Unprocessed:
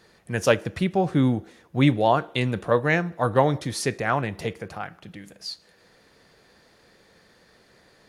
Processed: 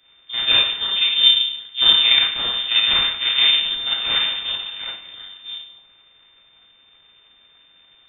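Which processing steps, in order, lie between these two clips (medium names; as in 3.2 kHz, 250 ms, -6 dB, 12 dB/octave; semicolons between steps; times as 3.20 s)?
Schroeder reverb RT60 0.7 s, combs from 27 ms, DRR -6 dB; full-wave rectifier; frequency inversion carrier 3.6 kHz; trim -4 dB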